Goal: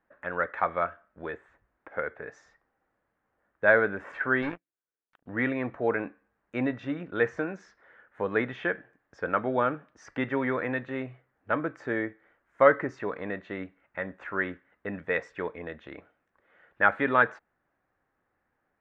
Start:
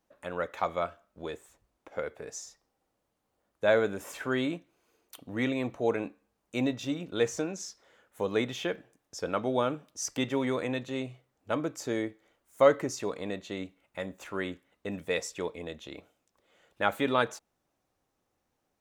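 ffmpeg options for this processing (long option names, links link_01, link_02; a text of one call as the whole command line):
ffmpeg -i in.wav -filter_complex "[0:a]asettb=1/sr,asplit=3[link_01][link_02][link_03];[link_01]atrim=end=4.424[link_04];[link_02]atrim=start=4.42:end=5.26,asetpts=PTS-STARTPTS,afade=type=in:duration=0.004:curve=qsin,afade=type=out:start_time=0.836:duration=0.004:curve=qsin,aeval=exprs='0.106*(cos(1*acos(clip(val(0)/0.106,-1,1)))-cos(1*PI/2))+0.00668*(cos(3*acos(clip(val(0)/0.106,-1,1)))-cos(3*PI/2))+0.0119*(cos(7*acos(clip(val(0)/0.106,-1,1)))-cos(7*PI/2))':channel_layout=same[link_05];[link_03]atrim=start=5.256[link_06];[link_04][link_05]acrossfade=duration=0.004:curve1=hsin:curve2=qsin[link_07];[link_07][link_06]acrossfade=duration=0.004:curve1=qsin:curve2=hsin,lowpass=frequency=1700:width_type=q:width=3.6" -ar 44100 -c:a libvorbis -b:a 192k out.ogg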